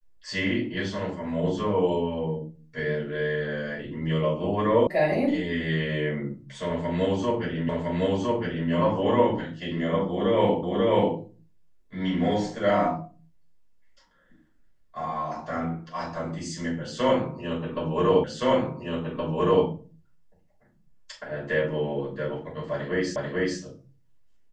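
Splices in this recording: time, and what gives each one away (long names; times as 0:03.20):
0:04.87: cut off before it has died away
0:07.69: the same again, the last 1.01 s
0:10.63: the same again, the last 0.54 s
0:18.24: the same again, the last 1.42 s
0:23.16: the same again, the last 0.44 s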